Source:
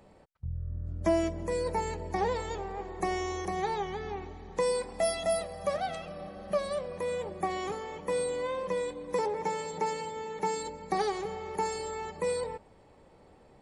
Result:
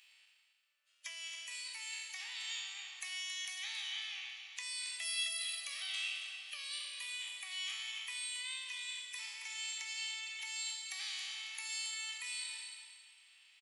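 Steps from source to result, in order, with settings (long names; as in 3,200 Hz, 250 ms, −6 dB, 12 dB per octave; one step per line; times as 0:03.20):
peak hold with a decay on every bin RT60 1.06 s
downward compressor 6 to 1, threshold −32 dBFS, peak gain reduction 11 dB
four-pole ladder high-pass 2,500 Hz, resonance 60%
repeating echo 274 ms, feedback 30%, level −9 dB
level +12.5 dB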